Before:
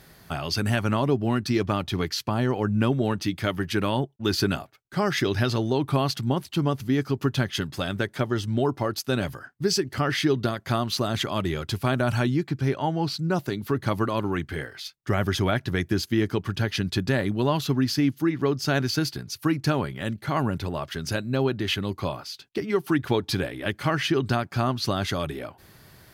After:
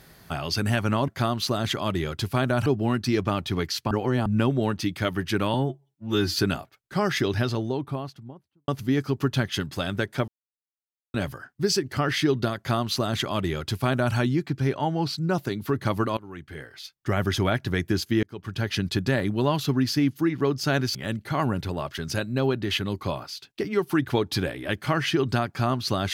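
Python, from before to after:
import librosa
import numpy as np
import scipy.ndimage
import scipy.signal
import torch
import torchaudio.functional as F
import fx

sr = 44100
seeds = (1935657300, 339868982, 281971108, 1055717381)

y = fx.studio_fade_out(x, sr, start_s=5.09, length_s=1.6)
y = fx.edit(y, sr, fx.reverse_span(start_s=2.33, length_s=0.35),
    fx.stretch_span(start_s=3.96, length_s=0.41, factor=2.0),
    fx.silence(start_s=8.29, length_s=0.86),
    fx.duplicate(start_s=10.58, length_s=1.58, to_s=1.08),
    fx.fade_in_from(start_s=14.18, length_s=1.05, floor_db=-21.0),
    fx.fade_in_span(start_s=16.24, length_s=0.48),
    fx.cut(start_s=18.96, length_s=0.96), tone=tone)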